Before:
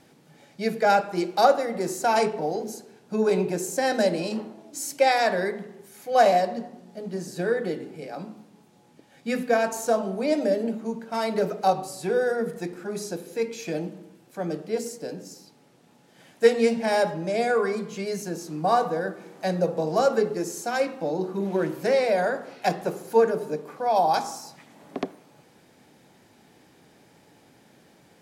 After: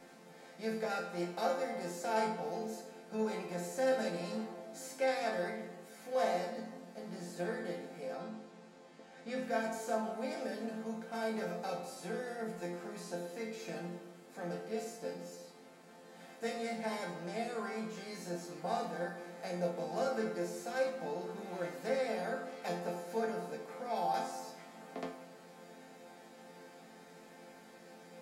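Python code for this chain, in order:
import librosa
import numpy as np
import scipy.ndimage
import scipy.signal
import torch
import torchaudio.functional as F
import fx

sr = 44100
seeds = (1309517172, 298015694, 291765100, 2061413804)

y = fx.bin_compress(x, sr, power=0.6)
y = fx.lowpass(y, sr, hz=7200.0, slope=12, at=(8.14, 9.43))
y = fx.resonator_bank(y, sr, root=53, chord='major', decay_s=0.39)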